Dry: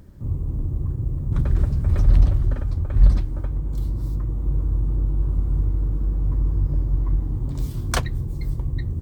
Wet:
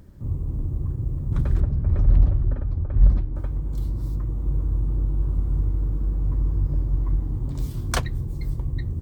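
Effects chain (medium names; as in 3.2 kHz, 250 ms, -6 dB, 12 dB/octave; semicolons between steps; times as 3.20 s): 1.60–3.36 s: low-pass 1 kHz 6 dB/octave; trim -1.5 dB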